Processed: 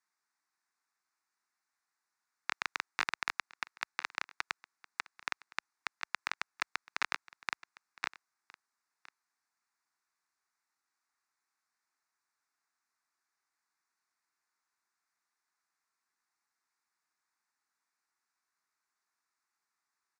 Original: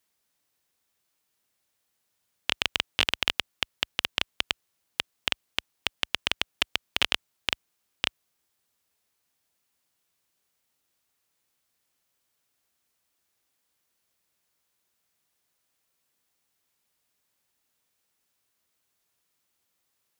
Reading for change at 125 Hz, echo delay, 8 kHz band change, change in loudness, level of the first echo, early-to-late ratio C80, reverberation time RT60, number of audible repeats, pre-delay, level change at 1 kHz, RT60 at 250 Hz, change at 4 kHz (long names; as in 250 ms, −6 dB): below −20 dB, 1,013 ms, −9.5 dB, −10.0 dB, −21.0 dB, no reverb audible, no reverb audible, 1, no reverb audible, −1.5 dB, no reverb audible, −17.5 dB